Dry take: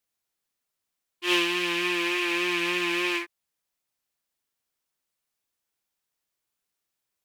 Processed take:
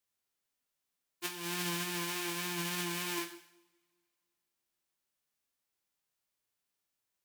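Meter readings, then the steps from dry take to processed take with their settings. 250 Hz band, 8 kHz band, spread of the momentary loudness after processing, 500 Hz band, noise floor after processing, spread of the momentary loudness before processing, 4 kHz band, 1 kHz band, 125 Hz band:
−10.5 dB, +1.0 dB, 8 LU, −13.0 dB, below −85 dBFS, 7 LU, −11.0 dB, −9.0 dB, +4.0 dB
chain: spectral envelope flattened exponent 0.3
compressor whose output falls as the input rises −29 dBFS, ratio −0.5
coupled-rooms reverb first 0.71 s, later 2.4 s, from −28 dB, DRR 6 dB
level −7.5 dB

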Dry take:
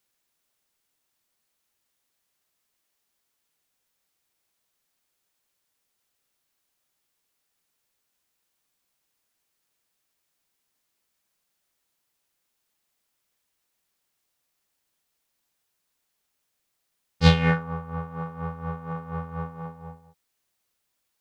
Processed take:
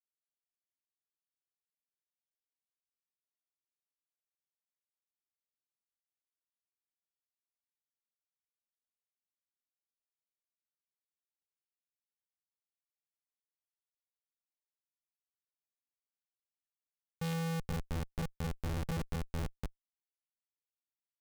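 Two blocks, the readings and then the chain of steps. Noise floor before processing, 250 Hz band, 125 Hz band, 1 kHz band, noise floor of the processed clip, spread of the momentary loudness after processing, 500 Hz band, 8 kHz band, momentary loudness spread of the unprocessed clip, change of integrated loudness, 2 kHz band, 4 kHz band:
−78 dBFS, −12.0 dB, −11.5 dB, −14.5 dB, below −85 dBFS, 6 LU, −12.0 dB, can't be measured, 19 LU, −12.5 dB, −15.5 dB, −16.0 dB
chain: log-companded quantiser 4 bits
slap from a distant wall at 260 metres, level −14 dB
comparator with hysteresis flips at −26 dBFS

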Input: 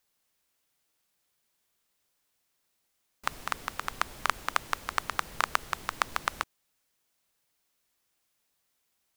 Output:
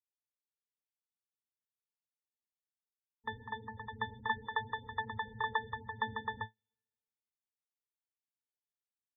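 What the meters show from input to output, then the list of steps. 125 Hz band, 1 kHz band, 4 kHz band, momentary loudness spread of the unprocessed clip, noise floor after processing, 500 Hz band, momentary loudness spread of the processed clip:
+2.5 dB, −6.0 dB, −9.0 dB, 7 LU, below −85 dBFS, −3.5 dB, 9 LU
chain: resonances in every octave A, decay 0.15 s
gate on every frequency bin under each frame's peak −15 dB strong
multiband upward and downward expander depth 70%
level +11 dB

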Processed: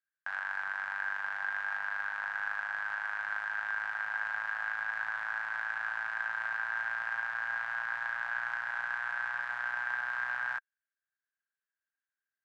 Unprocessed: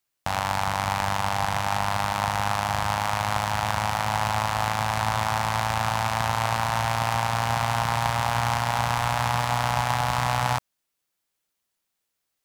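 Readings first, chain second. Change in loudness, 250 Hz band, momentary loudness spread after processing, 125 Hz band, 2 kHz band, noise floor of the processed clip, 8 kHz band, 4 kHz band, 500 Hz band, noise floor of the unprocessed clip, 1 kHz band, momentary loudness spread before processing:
−9.0 dB, below −35 dB, 1 LU, below −40 dB, −0.5 dB, below −85 dBFS, below −30 dB, −23.0 dB, −24.5 dB, −80 dBFS, −17.0 dB, 1 LU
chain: resonant band-pass 1,600 Hz, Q 18
level +7 dB

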